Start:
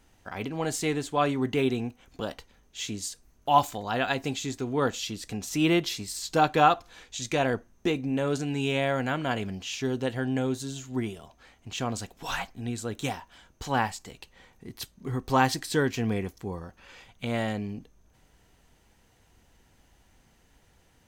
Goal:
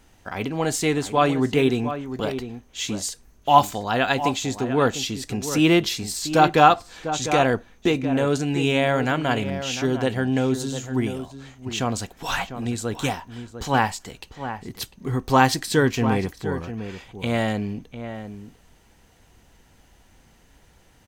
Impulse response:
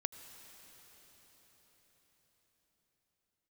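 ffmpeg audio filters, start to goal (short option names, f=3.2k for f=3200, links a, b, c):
-filter_complex "[0:a]asplit=2[a][b];[b]adelay=699.7,volume=-10dB,highshelf=f=4k:g=-15.7[c];[a][c]amix=inputs=2:normalize=0,volume=6dB"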